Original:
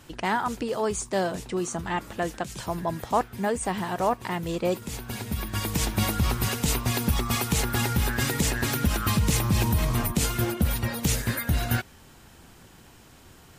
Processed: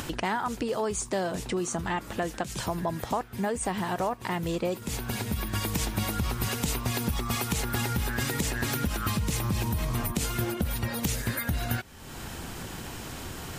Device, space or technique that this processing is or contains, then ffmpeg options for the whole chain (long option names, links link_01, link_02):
upward and downward compression: -af "acompressor=mode=upward:threshold=-27dB:ratio=2.5,acompressor=threshold=-26dB:ratio=6,volume=1dB"